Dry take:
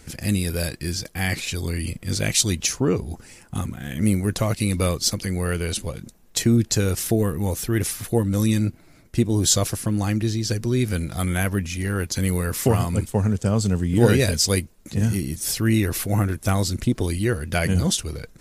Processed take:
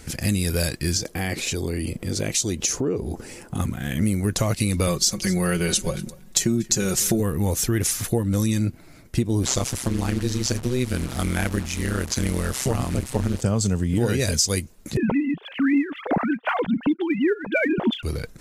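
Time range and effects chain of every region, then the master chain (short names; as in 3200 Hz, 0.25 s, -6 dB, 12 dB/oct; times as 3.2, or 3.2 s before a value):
0.97–3.6 bell 400 Hz +9.5 dB 1.7 oct + compressor 2.5:1, threshold -30 dBFS
4.87–7.2 comb 5.4 ms, depth 73% + echo 0.236 s -21.5 dB
9.43–13.41 delta modulation 64 kbps, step -29.5 dBFS + AM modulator 130 Hz, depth 80%
14.97–18.03 sine-wave speech + phaser 1.7 Hz, delay 4.6 ms, feedback 43%
whole clip: dynamic EQ 6600 Hz, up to +8 dB, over -42 dBFS, Q 2.1; compressor 6:1, threshold -22 dBFS; gain +4 dB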